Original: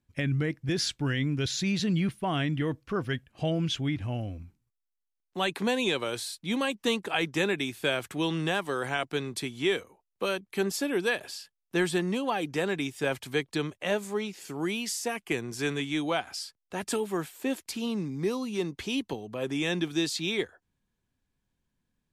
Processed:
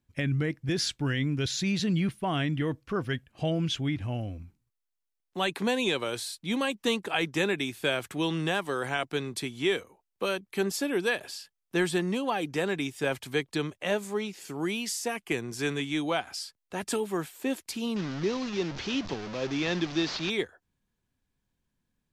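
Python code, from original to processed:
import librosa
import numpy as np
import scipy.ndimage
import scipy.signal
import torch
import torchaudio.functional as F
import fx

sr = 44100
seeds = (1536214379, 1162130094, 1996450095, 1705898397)

y = fx.delta_mod(x, sr, bps=32000, step_db=-32.0, at=(17.96, 20.3))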